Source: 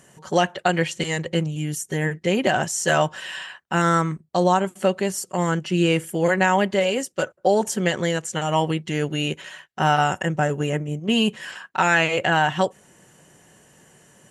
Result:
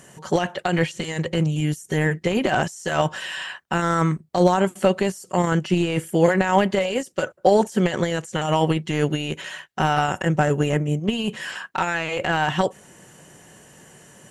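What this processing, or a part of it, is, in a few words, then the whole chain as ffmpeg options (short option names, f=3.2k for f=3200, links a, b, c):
de-esser from a sidechain: -filter_complex "[0:a]asplit=2[a][b];[b]highpass=4.8k,apad=whole_len=630681[c];[a][c]sidechaincompress=threshold=-42dB:ratio=12:attack=1.2:release=20,volume=5dB"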